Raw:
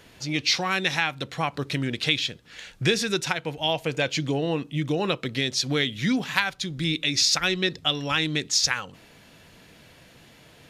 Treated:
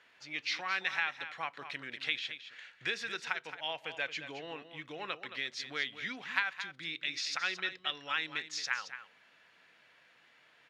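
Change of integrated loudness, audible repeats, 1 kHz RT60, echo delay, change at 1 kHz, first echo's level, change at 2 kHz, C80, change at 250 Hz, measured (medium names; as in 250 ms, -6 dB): -11.5 dB, 1, no reverb, 220 ms, -10.0 dB, -11.0 dB, -7.0 dB, no reverb, -23.5 dB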